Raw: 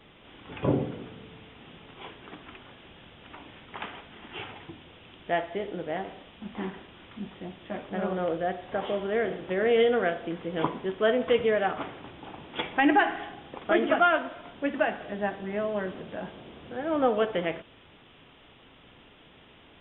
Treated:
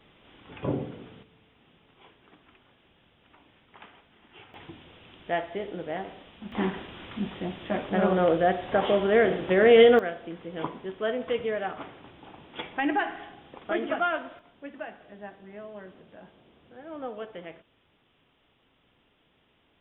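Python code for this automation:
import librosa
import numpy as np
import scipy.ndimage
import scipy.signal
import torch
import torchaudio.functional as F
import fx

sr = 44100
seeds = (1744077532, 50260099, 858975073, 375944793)

y = fx.gain(x, sr, db=fx.steps((0.0, -4.0), (1.23, -12.0), (4.54, -1.0), (6.52, 6.5), (9.99, -5.0), (14.39, -12.5)))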